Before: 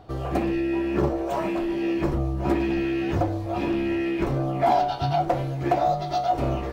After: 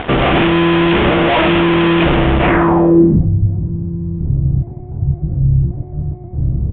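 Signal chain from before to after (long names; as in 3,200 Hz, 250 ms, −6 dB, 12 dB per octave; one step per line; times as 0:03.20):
sub-octave generator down 2 octaves, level −4 dB
low-shelf EQ 120 Hz −10 dB
fuzz pedal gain 46 dB, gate −50 dBFS
pitch-shifted copies added −12 semitones −5 dB
low-pass filter sweep 3,100 Hz → 110 Hz, 0:02.40–0:03.33
downsampling to 8,000 Hz
high-frequency loss of the air 160 metres
level +1 dB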